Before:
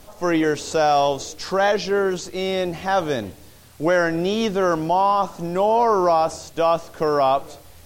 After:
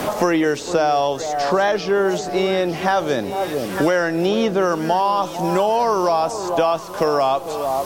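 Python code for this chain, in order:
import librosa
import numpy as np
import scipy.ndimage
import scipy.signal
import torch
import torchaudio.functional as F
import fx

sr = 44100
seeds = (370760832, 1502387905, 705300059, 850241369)

y = fx.low_shelf(x, sr, hz=67.0, db=-12.0)
y = fx.echo_alternate(y, sr, ms=449, hz=1000.0, feedback_pct=66, wet_db=-13)
y = fx.band_squash(y, sr, depth_pct=100)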